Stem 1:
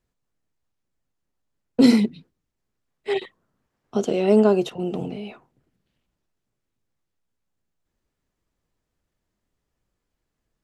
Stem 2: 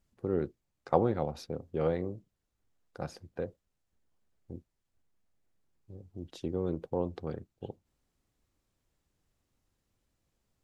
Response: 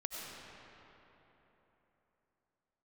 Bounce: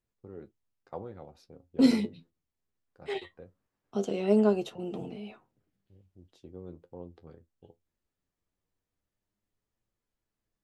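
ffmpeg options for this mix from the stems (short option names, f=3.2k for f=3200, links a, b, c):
-filter_complex "[0:a]volume=-4.5dB[a];[1:a]agate=range=-18dB:threshold=-56dB:ratio=16:detection=peak,volume=-10dB[b];[a][b]amix=inputs=2:normalize=0,flanger=delay=8.9:depth=3.3:regen=52:speed=0.2:shape=triangular"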